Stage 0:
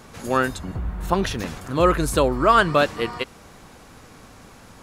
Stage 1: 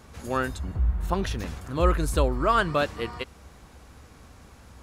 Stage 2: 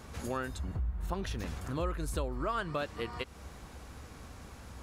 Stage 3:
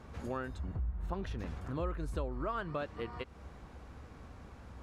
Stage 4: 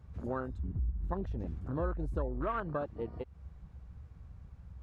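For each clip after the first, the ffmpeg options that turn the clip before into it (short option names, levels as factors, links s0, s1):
-af "equalizer=f=65:w=1.8:g=14.5,volume=0.473"
-af "acompressor=threshold=0.0158:ratio=3,volume=1.12"
-af "lowpass=f=1800:p=1,volume=0.794"
-af "afwtdn=0.01,volume=1.33"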